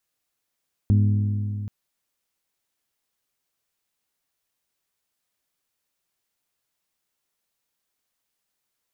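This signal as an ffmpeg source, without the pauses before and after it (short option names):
-f lavfi -i "aevalsrc='0.2*pow(10,-3*t/3.15)*sin(2*PI*103*t)+0.0841*pow(10,-3*t/2.559)*sin(2*PI*206*t)+0.0355*pow(10,-3*t/2.422)*sin(2*PI*247.2*t)+0.015*pow(10,-3*t/2.266)*sin(2*PI*309*t)+0.00631*pow(10,-3*t/2.078)*sin(2*PI*412*t)':d=0.78:s=44100"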